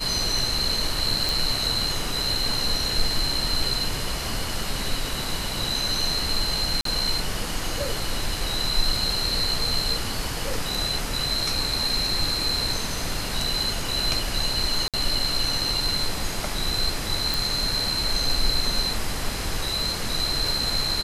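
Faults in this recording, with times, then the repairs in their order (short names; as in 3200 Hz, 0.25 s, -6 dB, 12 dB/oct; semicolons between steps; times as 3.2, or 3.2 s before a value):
1.29 pop
6.81–6.85 gap 43 ms
14.88–14.94 gap 57 ms
17.34 pop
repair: de-click; interpolate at 6.81, 43 ms; interpolate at 14.88, 57 ms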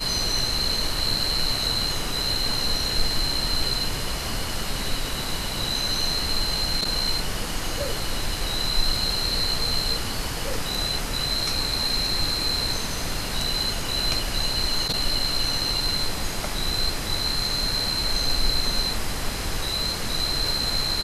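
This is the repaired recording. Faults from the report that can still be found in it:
none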